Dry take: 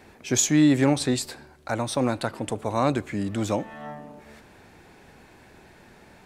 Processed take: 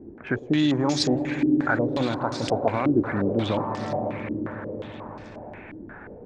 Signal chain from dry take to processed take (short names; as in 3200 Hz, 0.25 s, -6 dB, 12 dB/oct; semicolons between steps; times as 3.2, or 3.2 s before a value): Wiener smoothing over 9 samples; in parallel at +2.5 dB: compressor, threshold -35 dBFS, peak gain reduction 19 dB; on the sum: limiter -12.5 dBFS, peak gain reduction 6.5 dB; on a send: swelling echo 0.106 s, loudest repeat 5, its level -14 dB; on the sum: stepped low-pass 5.6 Hz 320–5100 Hz; gain -2.5 dB